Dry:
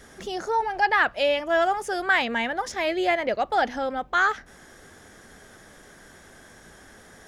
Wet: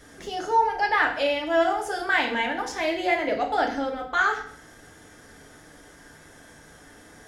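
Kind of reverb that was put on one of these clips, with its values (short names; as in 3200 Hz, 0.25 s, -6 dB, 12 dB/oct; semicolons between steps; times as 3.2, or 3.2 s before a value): FDN reverb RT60 0.58 s, low-frequency decay 1.35×, high-frequency decay 1×, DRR 0.5 dB; gain -3 dB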